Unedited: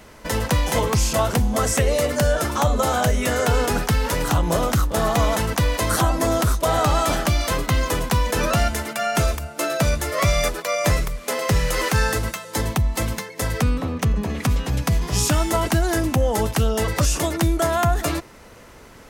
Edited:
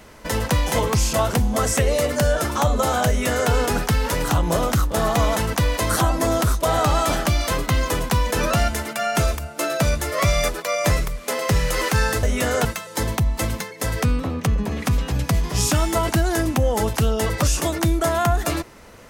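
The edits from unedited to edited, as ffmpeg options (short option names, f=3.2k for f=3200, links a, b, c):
-filter_complex "[0:a]asplit=3[a][b][c];[a]atrim=end=12.232[d];[b]atrim=start=3.078:end=3.502[e];[c]atrim=start=12.228[f];[d][e]acrossfade=d=0.004:c1=hsin:c2=hsin[g];[g][f]acrossfade=d=0.004:c1=hsin:c2=hsin"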